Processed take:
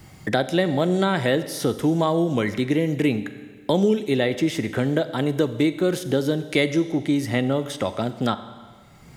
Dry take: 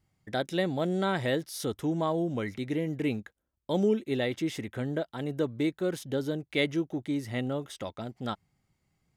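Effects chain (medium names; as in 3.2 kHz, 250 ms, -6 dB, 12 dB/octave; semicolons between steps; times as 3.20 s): 6.50–6.92 s: high-order bell 7.3 kHz +8 dB; Schroeder reverb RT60 1 s, combs from 30 ms, DRR 12.5 dB; three bands compressed up and down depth 70%; trim +8 dB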